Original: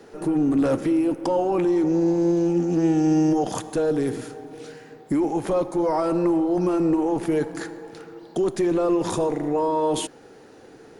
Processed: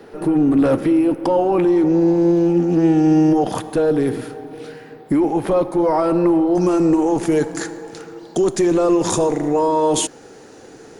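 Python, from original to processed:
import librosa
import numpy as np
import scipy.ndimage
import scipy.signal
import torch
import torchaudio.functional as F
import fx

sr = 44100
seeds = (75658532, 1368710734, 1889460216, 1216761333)

y = fx.peak_eq(x, sr, hz=6800.0, db=fx.steps((0.0, -9.5), (6.55, 8.0)), octaves=0.77)
y = y * librosa.db_to_amplitude(5.5)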